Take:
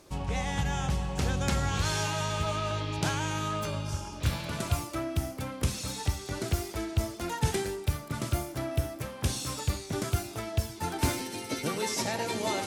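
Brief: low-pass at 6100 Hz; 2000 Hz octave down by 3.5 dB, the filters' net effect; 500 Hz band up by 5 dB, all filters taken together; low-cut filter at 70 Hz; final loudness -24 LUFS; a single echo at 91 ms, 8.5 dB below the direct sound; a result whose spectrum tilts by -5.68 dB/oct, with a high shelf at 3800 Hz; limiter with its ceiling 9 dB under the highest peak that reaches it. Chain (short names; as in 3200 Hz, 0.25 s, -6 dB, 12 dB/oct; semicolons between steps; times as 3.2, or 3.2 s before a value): HPF 70 Hz; LPF 6100 Hz; bell 500 Hz +7 dB; bell 2000 Hz -4 dB; high shelf 3800 Hz -3.5 dB; limiter -23 dBFS; echo 91 ms -8.5 dB; gain +9 dB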